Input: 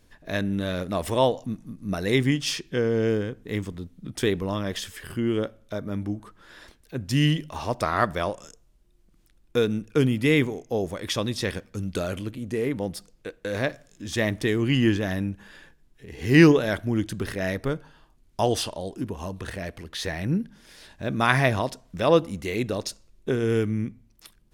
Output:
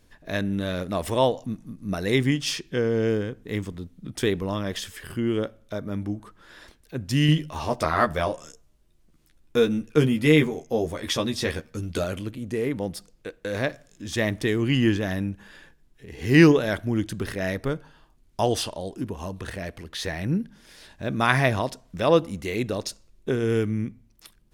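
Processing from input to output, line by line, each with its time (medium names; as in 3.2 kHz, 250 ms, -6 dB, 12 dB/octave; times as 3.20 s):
7.27–12.04 s: doubling 13 ms -4 dB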